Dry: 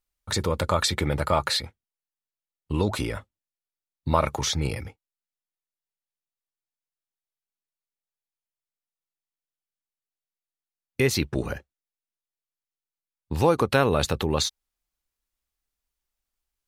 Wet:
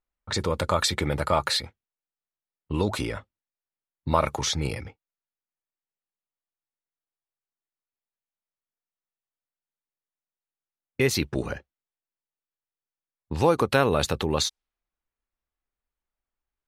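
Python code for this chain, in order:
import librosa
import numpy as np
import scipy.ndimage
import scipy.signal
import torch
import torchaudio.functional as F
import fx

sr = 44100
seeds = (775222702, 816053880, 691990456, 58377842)

y = fx.env_lowpass(x, sr, base_hz=1900.0, full_db=-21.0)
y = fx.low_shelf(y, sr, hz=130.0, db=-3.5)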